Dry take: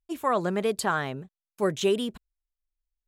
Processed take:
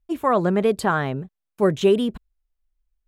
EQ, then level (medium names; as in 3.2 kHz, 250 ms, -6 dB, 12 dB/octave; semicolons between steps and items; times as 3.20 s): tilt EQ -1.5 dB/octave; peaking EQ 6.5 kHz -4 dB 1.5 oct; +5.0 dB